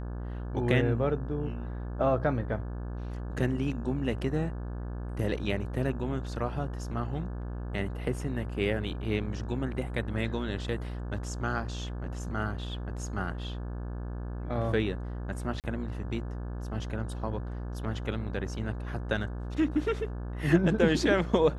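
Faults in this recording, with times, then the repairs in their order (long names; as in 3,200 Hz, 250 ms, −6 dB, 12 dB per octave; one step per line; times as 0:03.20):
mains buzz 60 Hz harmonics 29 −36 dBFS
0:15.60–0:15.64: drop-out 38 ms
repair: hum removal 60 Hz, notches 29
repair the gap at 0:15.60, 38 ms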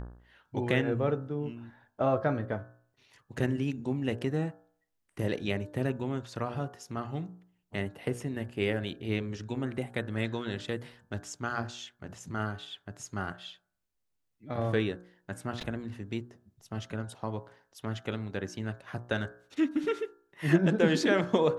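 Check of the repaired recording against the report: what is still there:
none of them is left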